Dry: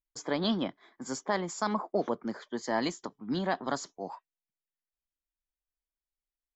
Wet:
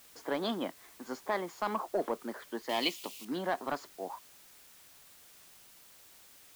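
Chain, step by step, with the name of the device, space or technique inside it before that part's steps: tape answering machine (band-pass 310–3000 Hz; saturation -21.5 dBFS, distortion -17 dB; wow and flutter; white noise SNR 19 dB); 2.69–3.25 s: resonant high shelf 2.1 kHz +8.5 dB, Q 3

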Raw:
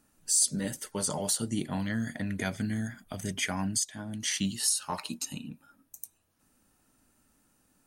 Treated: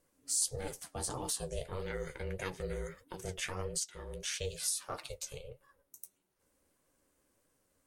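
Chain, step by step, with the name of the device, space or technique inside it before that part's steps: alien voice (ring modulator 280 Hz; flange 1.6 Hz, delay 5.4 ms, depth 10 ms, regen +42%)

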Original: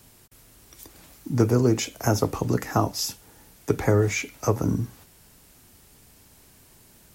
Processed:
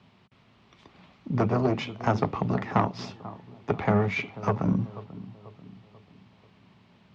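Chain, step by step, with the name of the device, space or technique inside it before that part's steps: analogue delay pedal into a guitar amplifier (bucket-brigade echo 489 ms, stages 4096, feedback 45%, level -16.5 dB; valve stage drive 16 dB, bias 0.8; cabinet simulation 110–3500 Hz, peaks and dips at 190 Hz +7 dB, 310 Hz -7 dB, 490 Hz -5 dB, 1.1 kHz +3 dB, 1.6 kHz -5 dB); trim +4.5 dB

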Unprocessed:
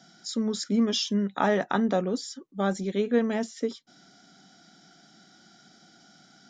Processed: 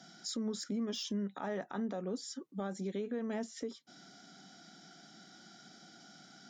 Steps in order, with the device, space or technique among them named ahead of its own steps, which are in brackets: dynamic bell 3.4 kHz, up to -4 dB, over -46 dBFS, Q 0.75; podcast mastering chain (high-pass 110 Hz; de-esser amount 75%; compression 3:1, threshold -35 dBFS, peak gain reduction 12.5 dB; peak limiter -28.5 dBFS, peak gain reduction 9 dB; MP3 96 kbps 44.1 kHz)

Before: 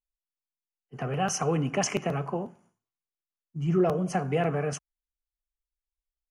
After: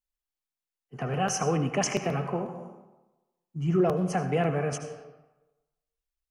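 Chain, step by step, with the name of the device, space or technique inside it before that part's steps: compressed reverb return (on a send at -4.5 dB: reverberation RT60 1.0 s, pre-delay 70 ms + compression, threshold -29 dBFS, peak gain reduction 10 dB)

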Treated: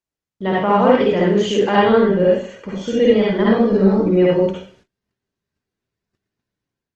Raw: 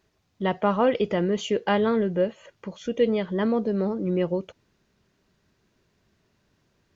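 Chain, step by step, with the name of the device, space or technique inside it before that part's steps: speakerphone in a meeting room (reverberation RT60 0.50 s, pre-delay 49 ms, DRR -5.5 dB; level rider gain up to 6 dB; gate -50 dBFS, range -27 dB; Opus 20 kbps 48 kHz)

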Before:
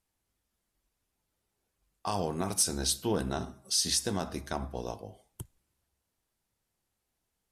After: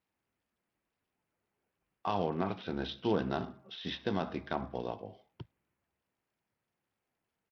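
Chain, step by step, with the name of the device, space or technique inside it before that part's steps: Bluetooth headset (high-pass 120 Hz 12 dB/octave; resampled via 8 kHz; SBC 64 kbps 44.1 kHz)

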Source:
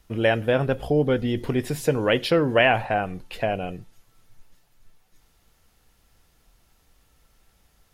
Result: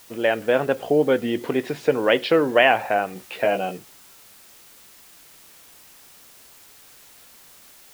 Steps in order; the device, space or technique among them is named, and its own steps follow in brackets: dictaphone (band-pass 280–3400 Hz; level rider gain up to 4.5 dB; wow and flutter; white noise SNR 25 dB); 3.14–3.78 s: doubling 16 ms -4.5 dB

